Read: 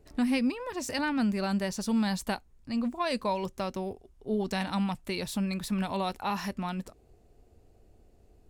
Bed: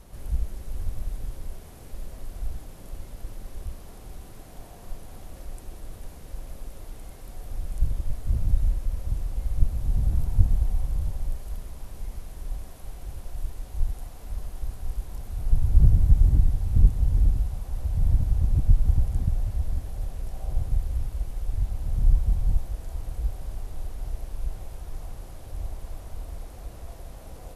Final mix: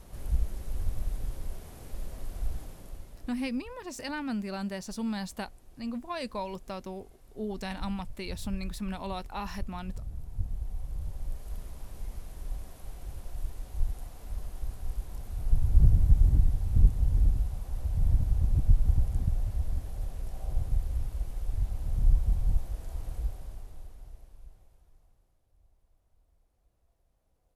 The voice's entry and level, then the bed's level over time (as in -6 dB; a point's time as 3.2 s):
3.10 s, -5.5 dB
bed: 2.64 s -1 dB
3.6 s -15.5 dB
10.2 s -15.5 dB
11.6 s -3.5 dB
23.17 s -3.5 dB
25.45 s -32 dB